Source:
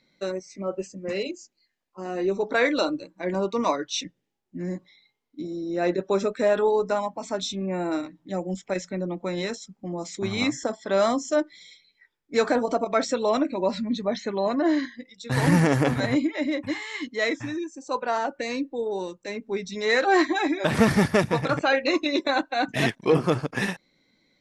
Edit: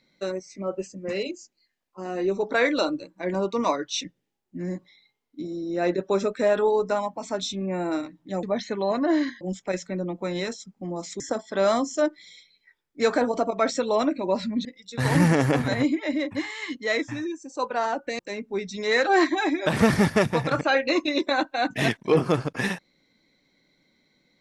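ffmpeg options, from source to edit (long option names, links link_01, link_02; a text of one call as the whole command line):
ffmpeg -i in.wav -filter_complex "[0:a]asplit=6[link_01][link_02][link_03][link_04][link_05][link_06];[link_01]atrim=end=8.432[link_07];[link_02]atrim=start=13.988:end=14.972[link_08];[link_03]atrim=start=8.428:end=10.222[link_09];[link_04]atrim=start=10.538:end=13.992[link_10];[link_05]atrim=start=14.968:end=18.512[link_11];[link_06]atrim=start=19.168[link_12];[link_07][link_08]acrossfade=duration=0.004:curve1=hsin:curve2=hsin[link_13];[link_13][link_09]acrossfade=duration=0.004:curve1=hsin:curve2=hsin[link_14];[link_14][link_10]acrossfade=duration=0.004:curve1=hsin:curve2=hsin[link_15];[link_15][link_11]acrossfade=duration=0.004:curve1=hsin:curve2=hsin[link_16];[link_16][link_12]acrossfade=duration=0.004:curve1=hsin:curve2=hsin" out.wav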